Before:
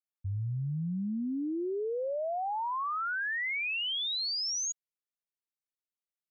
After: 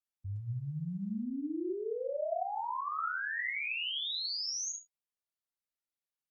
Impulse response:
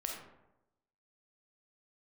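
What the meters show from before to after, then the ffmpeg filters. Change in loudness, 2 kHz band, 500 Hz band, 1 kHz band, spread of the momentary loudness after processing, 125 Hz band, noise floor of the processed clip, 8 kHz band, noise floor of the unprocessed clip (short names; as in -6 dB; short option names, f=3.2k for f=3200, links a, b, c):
-3.5 dB, -3.0 dB, -2.5 dB, -3.0 dB, 6 LU, -4.5 dB, under -85 dBFS, n/a, under -85 dBFS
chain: -filter_complex "[1:a]atrim=start_sample=2205,afade=t=out:st=0.2:d=0.01,atrim=end_sample=9261[a];[0:a][a]afir=irnorm=-1:irlink=0,volume=-3.5dB" -ar 48000 -c:a libopus -b:a 48k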